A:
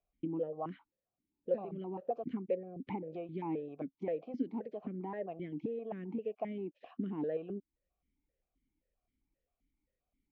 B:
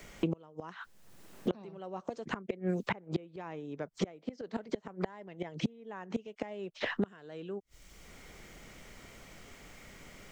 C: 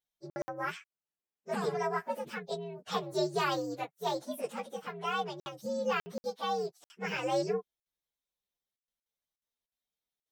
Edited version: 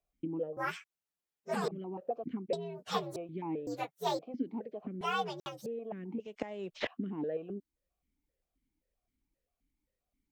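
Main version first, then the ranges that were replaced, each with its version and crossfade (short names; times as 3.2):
A
0.57–1.68 from C
2.53–3.16 from C
3.67–4.19 from C
5.01–5.66 from C
6.2–6.87 from B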